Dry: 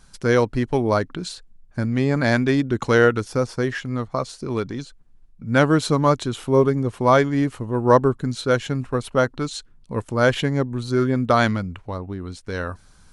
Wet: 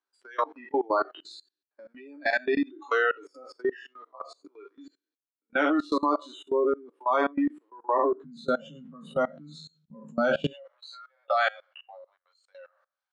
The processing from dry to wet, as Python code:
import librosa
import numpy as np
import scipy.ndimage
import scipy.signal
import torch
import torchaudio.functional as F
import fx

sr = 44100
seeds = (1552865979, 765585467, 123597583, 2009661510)

y = fx.spec_trails(x, sr, decay_s=0.54)
y = fx.cheby_ripple_highpass(y, sr, hz=fx.steps((0.0, 270.0), (8.24, 150.0), (10.5, 530.0)), ripple_db=3)
y = fx.noise_reduce_blind(y, sr, reduce_db=23)
y = scipy.signal.sosfilt(scipy.signal.butter(2, 3800.0, 'lowpass', fs=sr, output='sos'), y)
y = fx.doubler(y, sr, ms=13.0, db=-5)
y = fx.level_steps(y, sr, step_db=23)